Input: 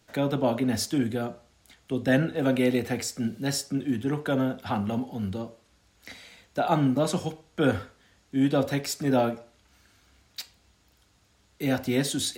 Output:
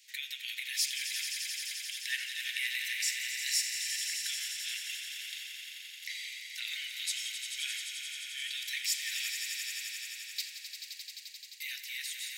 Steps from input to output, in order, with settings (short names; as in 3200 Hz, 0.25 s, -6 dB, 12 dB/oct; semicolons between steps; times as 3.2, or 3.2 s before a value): ending faded out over 1.27 s; steep high-pass 1900 Hz 72 dB/oct; in parallel at -3 dB: negative-ratio compressor -47 dBFS; on the sum: swelling echo 87 ms, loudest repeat 5, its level -9 dB